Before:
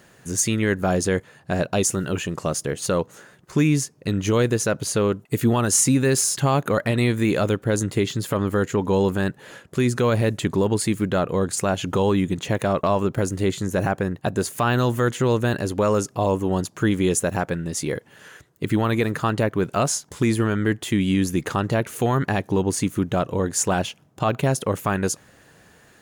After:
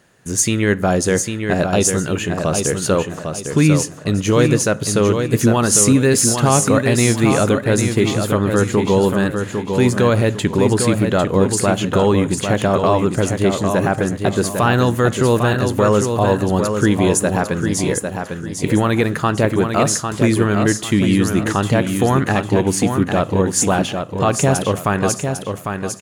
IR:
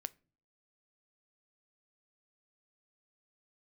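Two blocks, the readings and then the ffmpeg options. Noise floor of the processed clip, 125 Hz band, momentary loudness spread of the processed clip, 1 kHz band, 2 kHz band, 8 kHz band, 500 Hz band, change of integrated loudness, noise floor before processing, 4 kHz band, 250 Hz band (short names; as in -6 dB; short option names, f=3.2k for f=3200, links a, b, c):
-30 dBFS, +5.5 dB, 5 LU, +6.0 dB, +6.0 dB, +6.0 dB, +6.0 dB, +6.0 dB, -54 dBFS, +6.0 dB, +6.0 dB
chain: -filter_complex "[0:a]agate=range=-8dB:threshold=-44dB:ratio=16:detection=peak,aecho=1:1:801|1602|2403|3204:0.501|0.16|0.0513|0.0164,asplit=2[a][b];[1:a]atrim=start_sample=2205,asetrate=23814,aresample=44100[c];[b][c]afir=irnorm=-1:irlink=0,volume=8.5dB[d];[a][d]amix=inputs=2:normalize=0,volume=-6.5dB"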